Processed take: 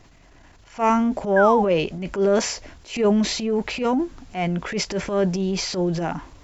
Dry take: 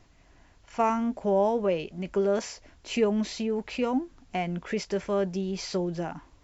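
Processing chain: transient shaper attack -11 dB, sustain +5 dB; painted sound fall, 1.36–1.63, 760–1700 Hz -29 dBFS; gain +7.5 dB

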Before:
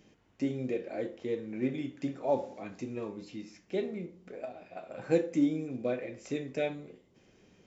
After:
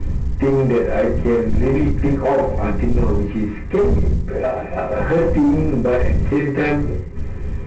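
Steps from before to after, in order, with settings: CVSD 32 kbps; wind noise 110 Hz -43 dBFS; LPF 2100 Hz 24 dB/oct; reverb RT60 0.20 s, pre-delay 4 ms, DRR -8 dB; in parallel at +2 dB: compressor 10:1, threshold -30 dBFS, peak gain reduction 24 dB; on the sum: dynamic EQ 1400 Hz, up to +3 dB, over -33 dBFS, Q 0.81; limiter -11 dBFS, peak gain reduction 11 dB; soft clip -16.5 dBFS, distortion -14 dB; gain +6.5 dB; µ-law 128 kbps 16000 Hz

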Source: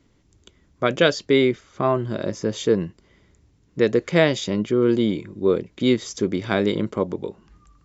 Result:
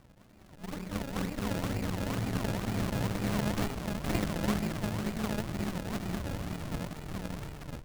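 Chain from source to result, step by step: compressor 12:1, threshold -20 dBFS, peak gain reduction 10 dB; hard clip -21.5 dBFS, distortion -10 dB; Paulstretch 6.5×, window 0.50 s, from 6.08; steep low-pass 5000 Hz 48 dB/oct; on a send: echo 1.108 s -7 dB; on the sum: spectral noise reduction 21 dB; decimation with a swept rate 36×, swing 100% 2.1 Hz; running maximum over 65 samples

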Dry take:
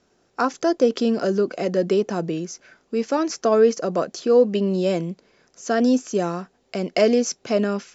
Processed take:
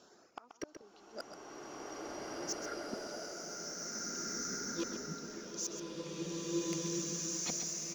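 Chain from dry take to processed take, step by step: repeated pitch sweeps -3 st, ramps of 1.071 s; HPF 510 Hz 6 dB/oct; in parallel at -2 dB: negative-ratio compressor -33 dBFS, ratio -1; on the sum: reverb removal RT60 1.6 s; flipped gate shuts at -20 dBFS, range -37 dB; LFO notch sine 0.53 Hz 930–4200 Hz; soft clip -30 dBFS, distortion -10 dB; on a send: echo 0.131 s -9.5 dB; on the sum: bloom reverb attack 2.02 s, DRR -9 dB; gain -2 dB

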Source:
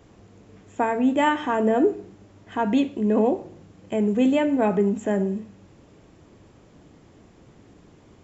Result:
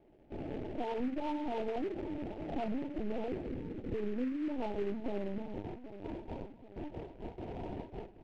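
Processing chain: per-bin compression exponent 0.6; HPF 64 Hz 6 dB/oct; gate with hold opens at -26 dBFS; steep low-pass 870 Hz 96 dB/oct, from 3.27 s 510 Hz, from 4.47 s 980 Hz; compressor 10:1, threshold -28 dBFS, peak gain reduction 15 dB; doubler 20 ms -7 dB; feedback echo 0.784 s, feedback 50%, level -13 dB; LPC vocoder at 8 kHz pitch kept; noise-modulated delay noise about 1700 Hz, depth 0.042 ms; gain -6 dB

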